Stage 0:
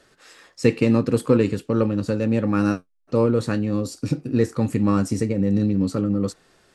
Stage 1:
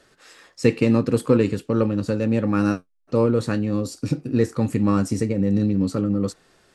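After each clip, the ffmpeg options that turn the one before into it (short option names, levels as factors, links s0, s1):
-af anull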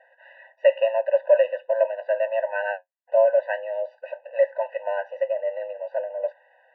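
-af "highpass=f=200:t=q:w=0.5412,highpass=f=200:t=q:w=1.307,lowpass=f=2400:t=q:w=0.5176,lowpass=f=2400:t=q:w=0.7071,lowpass=f=2400:t=q:w=1.932,afreqshift=96,afftfilt=real='re*eq(mod(floor(b*sr/1024/500),2),1)':imag='im*eq(mod(floor(b*sr/1024/500),2),1)':win_size=1024:overlap=0.75,volume=1.58"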